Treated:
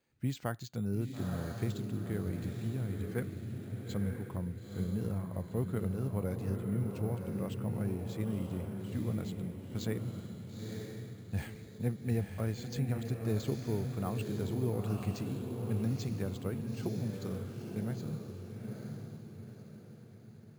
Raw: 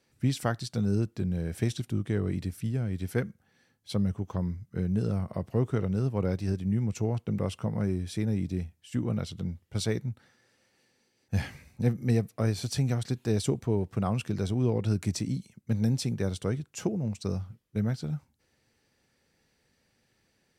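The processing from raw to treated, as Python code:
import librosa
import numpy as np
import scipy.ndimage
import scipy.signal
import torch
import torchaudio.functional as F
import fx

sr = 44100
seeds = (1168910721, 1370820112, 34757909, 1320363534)

y = scipy.signal.sosfilt(scipy.signal.butter(2, 5400.0, 'lowpass', fs=sr, output='sos'), x)
y = fx.echo_diffused(y, sr, ms=925, feedback_pct=44, wet_db=-4)
y = np.repeat(scipy.signal.resample_poly(y, 1, 4), 4)[:len(y)]
y = y * 10.0 ** (-7.5 / 20.0)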